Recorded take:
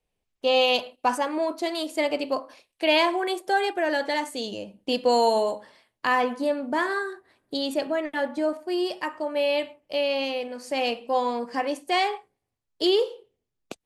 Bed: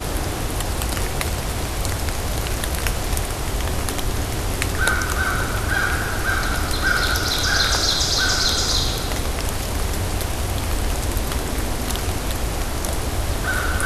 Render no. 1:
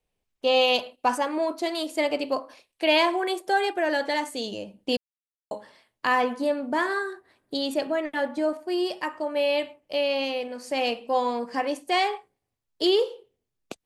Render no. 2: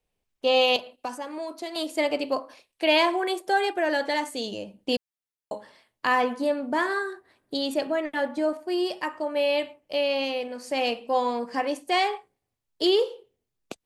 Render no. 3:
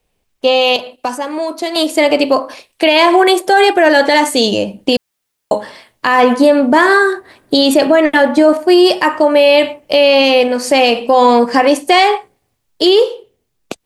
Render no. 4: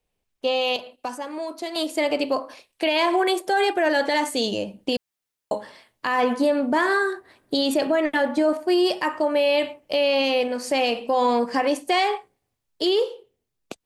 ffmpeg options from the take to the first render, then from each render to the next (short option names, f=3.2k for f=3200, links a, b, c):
-filter_complex "[0:a]asplit=3[a][b][c];[a]atrim=end=4.97,asetpts=PTS-STARTPTS,afade=t=out:st=4.966:d=0.004:c=hsin[d];[b]atrim=start=4.97:end=5.51,asetpts=PTS-STARTPTS,volume=0[e];[c]atrim=start=5.51,asetpts=PTS-STARTPTS,afade=t=in:d=0.004:c=hsin[f];[d][e][f]concat=n=3:v=0:a=1"
-filter_complex "[0:a]asettb=1/sr,asplit=3[a][b][c];[a]atrim=end=0.764[d];[b]atrim=start=0.76:end=1.76,asetpts=PTS-STARTPTS,afade=t=in:d=0.004:c=qsin,afade=t=out:st=0.996:d=0.004:c=qsin,acrossover=split=200|570|3900[e][f][g][h];[e]acompressor=threshold=-55dB:ratio=3[i];[f]acompressor=threshold=-40dB:ratio=3[j];[g]acompressor=threshold=-38dB:ratio=3[k];[h]acompressor=threshold=-47dB:ratio=3[l];[i][j][k][l]amix=inputs=4:normalize=0[m];[c]atrim=start=1.756[n];[d][m]acrossfade=d=0.004:c1=hsin:c2=qsin[o];[o][n]acrossfade=d=0.004:c1=qsin:c2=hsin"
-af "dynaudnorm=f=400:g=11:m=7.5dB,alimiter=level_in=13.5dB:limit=-1dB:release=50:level=0:latency=1"
-af "volume=-11.5dB"